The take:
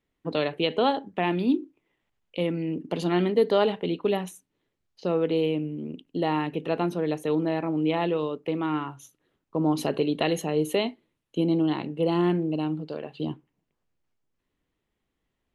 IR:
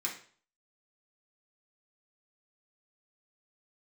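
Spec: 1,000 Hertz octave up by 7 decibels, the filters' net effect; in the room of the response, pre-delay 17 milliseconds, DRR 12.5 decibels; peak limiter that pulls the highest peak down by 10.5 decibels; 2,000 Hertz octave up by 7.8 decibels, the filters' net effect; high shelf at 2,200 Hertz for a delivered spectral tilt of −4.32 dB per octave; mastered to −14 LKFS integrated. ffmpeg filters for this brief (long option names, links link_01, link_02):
-filter_complex "[0:a]equalizer=frequency=1000:width_type=o:gain=7,equalizer=frequency=2000:width_type=o:gain=4.5,highshelf=frequency=2200:gain=6,alimiter=limit=-14.5dB:level=0:latency=1,asplit=2[link_01][link_02];[1:a]atrim=start_sample=2205,adelay=17[link_03];[link_02][link_03]afir=irnorm=-1:irlink=0,volume=-15.5dB[link_04];[link_01][link_04]amix=inputs=2:normalize=0,volume=12.5dB"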